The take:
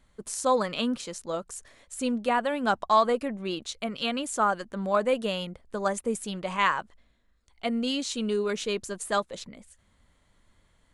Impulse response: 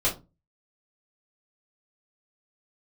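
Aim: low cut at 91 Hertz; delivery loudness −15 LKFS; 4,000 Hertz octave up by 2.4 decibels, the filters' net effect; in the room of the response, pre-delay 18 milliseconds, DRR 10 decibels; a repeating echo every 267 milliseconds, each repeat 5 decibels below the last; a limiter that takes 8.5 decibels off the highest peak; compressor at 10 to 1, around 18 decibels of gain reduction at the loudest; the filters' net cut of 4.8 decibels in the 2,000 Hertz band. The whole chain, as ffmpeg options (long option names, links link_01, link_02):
-filter_complex "[0:a]highpass=91,equalizer=frequency=2000:width_type=o:gain=-8.5,equalizer=frequency=4000:width_type=o:gain=6.5,acompressor=threshold=-37dB:ratio=10,alimiter=level_in=7dB:limit=-24dB:level=0:latency=1,volume=-7dB,aecho=1:1:267|534|801|1068|1335|1602|1869:0.562|0.315|0.176|0.0988|0.0553|0.031|0.0173,asplit=2[link_01][link_02];[1:a]atrim=start_sample=2205,adelay=18[link_03];[link_02][link_03]afir=irnorm=-1:irlink=0,volume=-21dB[link_04];[link_01][link_04]amix=inputs=2:normalize=0,volume=25dB"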